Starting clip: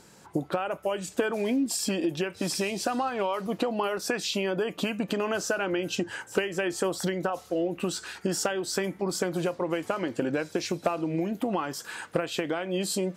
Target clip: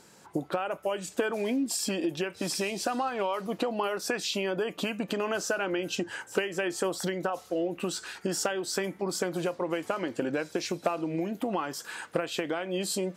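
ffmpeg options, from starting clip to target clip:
ffmpeg -i in.wav -af "lowshelf=frequency=130:gain=-8,volume=-1dB" out.wav

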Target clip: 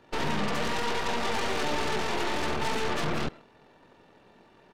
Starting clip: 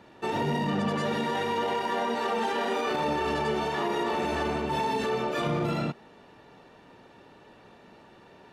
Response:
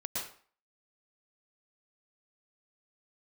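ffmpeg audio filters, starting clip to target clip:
-filter_complex "[0:a]atempo=1.8,asplit=2[link_01][link_02];[link_02]adelay=130,highpass=300,lowpass=3400,asoftclip=type=hard:threshold=-27dB,volume=-16dB[link_03];[link_01][link_03]amix=inputs=2:normalize=0,aeval=exprs='0.133*(cos(1*acos(clip(val(0)/0.133,-1,1)))-cos(1*PI/2))+0.0473*(cos(8*acos(clip(val(0)/0.133,-1,1)))-cos(8*PI/2))':channel_layout=same,volume=-4dB"

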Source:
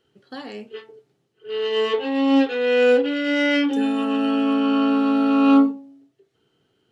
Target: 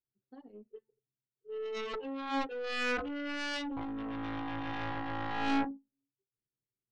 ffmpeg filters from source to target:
ffmpeg -i in.wav -af "aeval=exprs='0.501*(cos(1*acos(clip(val(0)/0.501,-1,1)))-cos(1*PI/2))+0.0708*(cos(2*acos(clip(val(0)/0.501,-1,1)))-cos(2*PI/2))+0.2*(cos(3*acos(clip(val(0)/0.501,-1,1)))-cos(3*PI/2))+0.0355*(cos(5*acos(clip(val(0)/0.501,-1,1)))-cos(5*PI/2))+0.0708*(cos(7*acos(clip(val(0)/0.501,-1,1)))-cos(7*PI/2))':channel_layout=same,asoftclip=type=tanh:threshold=-13dB,anlmdn=63.1,volume=-9dB" out.wav

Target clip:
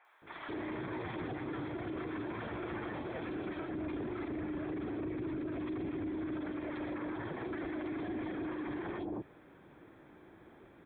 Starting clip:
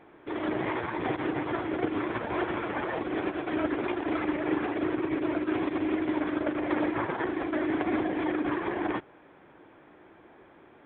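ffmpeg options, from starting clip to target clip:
ffmpeg -i in.wav -filter_complex "[0:a]asettb=1/sr,asplit=3[link_01][link_02][link_03];[link_01]atrim=end=3.484[link_04];[link_02]atrim=start=3.48:end=6.19,asetpts=PTS-STARTPTS,afade=type=in:duration=0.004:curve=qsin,afade=type=out:start_time=2.706:duration=0.004:curve=qsin,lowshelf=frequency=400:gain=7.5[link_05];[link_03]atrim=start=6.186[link_06];[link_04][link_05]acrossfade=duration=0.004:curve1=hsin:curve2=qsin[link_07];[link_07][link_06]acrossfade=duration=0.004:curve1=qsin:curve2=hsin,acompressor=threshold=-33dB:ratio=1.5,bass=frequency=250:gain=6,treble=frequency=4000:gain=11,bandreject=frequency=2900:width=14,acrossover=split=810|2900[link_08][link_09][link_10];[link_10]adelay=50[link_11];[link_08]adelay=220[link_12];[link_12][link_09][link_11]amix=inputs=3:normalize=0,alimiter=level_in=4.5dB:limit=-24dB:level=0:latency=1:release=29,volume=-4.5dB,volume=-3.5dB" out.wav

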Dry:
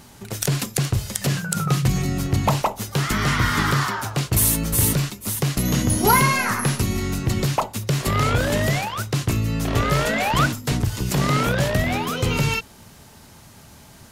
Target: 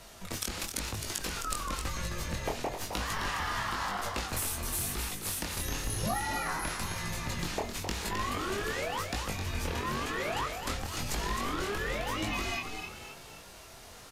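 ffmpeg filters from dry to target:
ffmpeg -i in.wav -filter_complex "[0:a]highpass=frequency=380:poles=1,highshelf=frequency=8900:gain=-5.5,acompressor=threshold=-31dB:ratio=6,aeval=exprs='0.237*(cos(1*acos(clip(val(0)/0.237,-1,1)))-cos(1*PI/2))+0.00335*(cos(7*acos(clip(val(0)/0.237,-1,1)))-cos(7*PI/2))+0.00266*(cos(8*acos(clip(val(0)/0.237,-1,1)))-cos(8*PI/2))':channel_layout=same,asplit=7[link_01][link_02][link_03][link_04][link_05][link_06][link_07];[link_02]adelay=262,afreqshift=62,volume=-7dB[link_08];[link_03]adelay=524,afreqshift=124,volume=-13.6dB[link_09];[link_04]adelay=786,afreqshift=186,volume=-20.1dB[link_10];[link_05]adelay=1048,afreqshift=248,volume=-26.7dB[link_11];[link_06]adelay=1310,afreqshift=310,volume=-33.2dB[link_12];[link_07]adelay=1572,afreqshift=372,volume=-39.8dB[link_13];[link_01][link_08][link_09][link_10][link_11][link_12][link_13]amix=inputs=7:normalize=0,afreqshift=-200,flanger=delay=19:depth=5.9:speed=0.98,volume=3dB" out.wav

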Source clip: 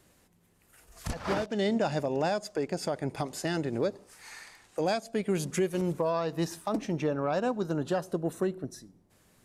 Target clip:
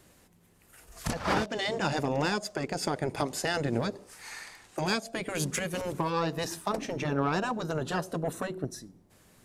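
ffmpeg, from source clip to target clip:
ffmpeg -i in.wav -af "aeval=exprs='0.133*(cos(1*acos(clip(val(0)/0.133,-1,1)))-cos(1*PI/2))+0.00335*(cos(7*acos(clip(val(0)/0.133,-1,1)))-cos(7*PI/2))':channel_layout=same,afftfilt=real='re*lt(hypot(re,im),0.2)':imag='im*lt(hypot(re,im),0.2)':win_size=1024:overlap=0.75,volume=5.5dB" out.wav

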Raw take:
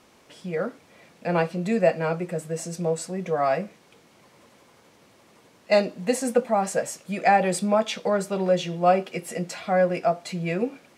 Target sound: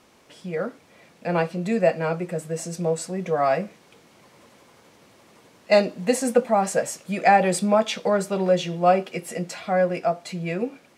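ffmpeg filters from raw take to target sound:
ffmpeg -i in.wav -af "dynaudnorm=framelen=590:gausssize=9:maxgain=3dB" out.wav

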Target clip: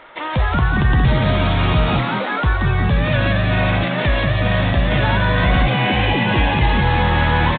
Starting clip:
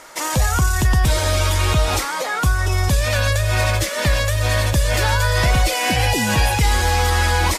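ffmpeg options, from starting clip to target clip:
ffmpeg -i in.wav -filter_complex "[0:a]aresample=8000,aresample=44100,asplit=7[link_01][link_02][link_03][link_04][link_05][link_06][link_07];[link_02]adelay=178,afreqshift=75,volume=-5dB[link_08];[link_03]adelay=356,afreqshift=150,volume=-11.6dB[link_09];[link_04]adelay=534,afreqshift=225,volume=-18.1dB[link_10];[link_05]adelay=712,afreqshift=300,volume=-24.7dB[link_11];[link_06]adelay=890,afreqshift=375,volume=-31.2dB[link_12];[link_07]adelay=1068,afreqshift=450,volume=-37.8dB[link_13];[link_01][link_08][link_09][link_10][link_11][link_12][link_13]amix=inputs=7:normalize=0" out.wav

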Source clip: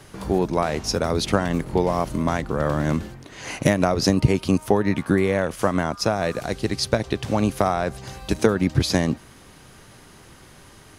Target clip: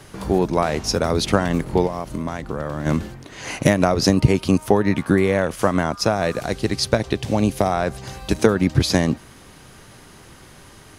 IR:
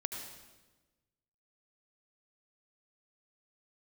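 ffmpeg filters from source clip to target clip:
-filter_complex "[0:a]asplit=3[link_01][link_02][link_03];[link_01]afade=type=out:start_time=1.86:duration=0.02[link_04];[link_02]acompressor=threshold=-25dB:ratio=6,afade=type=in:start_time=1.86:duration=0.02,afade=type=out:start_time=2.85:duration=0.02[link_05];[link_03]afade=type=in:start_time=2.85:duration=0.02[link_06];[link_04][link_05][link_06]amix=inputs=3:normalize=0,asettb=1/sr,asplit=3[link_07][link_08][link_09];[link_07]atrim=end=7.154[link_10];[link_08]atrim=start=7.15:end=7.72,asetpts=PTS-STARTPTS,afade=type=in:duration=0.004:curve=qsin,afade=type=out:start_time=0.566:duration=0.004:curve=qsin,equalizer=frequency=1300:width_type=o:width=0.85:gain=-7.5[link_11];[link_09]atrim=start=7.716[link_12];[link_10][link_11]acrossfade=duration=0.004:curve1=hsin:curve2=qsin[link_13];[link_13][link_12]acrossfade=duration=0.004:curve1=qsin:curve2=hsin,volume=2.5dB"

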